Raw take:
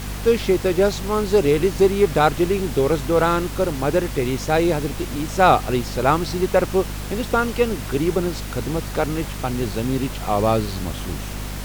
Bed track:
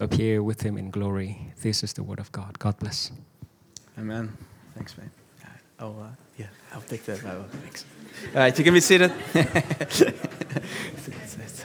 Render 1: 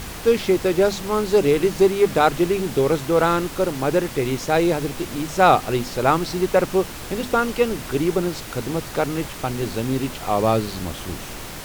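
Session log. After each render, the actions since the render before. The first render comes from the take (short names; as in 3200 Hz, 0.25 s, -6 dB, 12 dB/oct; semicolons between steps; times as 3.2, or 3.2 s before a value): notches 50/100/150/200/250 Hz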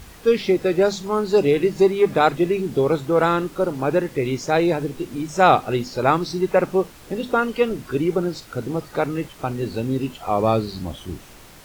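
noise print and reduce 11 dB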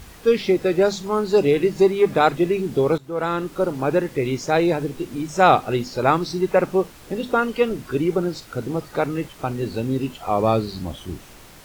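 2.98–3.58 fade in, from -17 dB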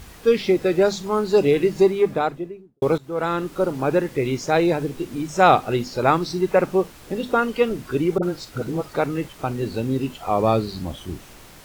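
1.75–2.82 studio fade out; 8.18–8.94 dispersion highs, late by 47 ms, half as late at 520 Hz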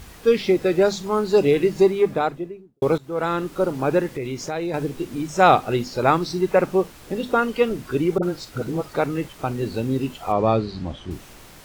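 4.15–4.74 compressor 2.5:1, threshold -27 dBFS; 10.32–11.11 air absorption 110 m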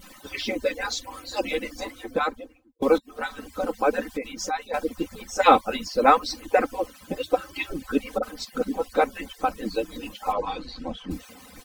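median-filter separation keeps percussive; comb 3.9 ms, depth 83%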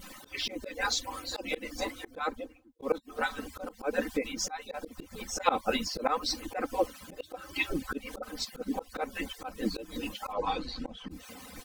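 auto swell 0.208 s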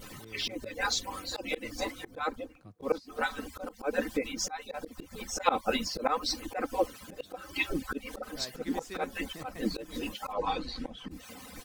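add bed track -27.5 dB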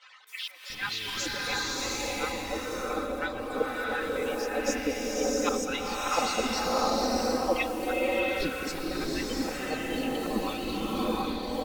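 three bands offset in time mids, highs, lows 0.27/0.7 s, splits 970/4700 Hz; bloom reverb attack 0.73 s, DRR -4.5 dB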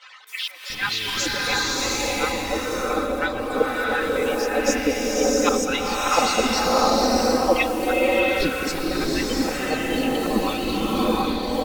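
gain +8 dB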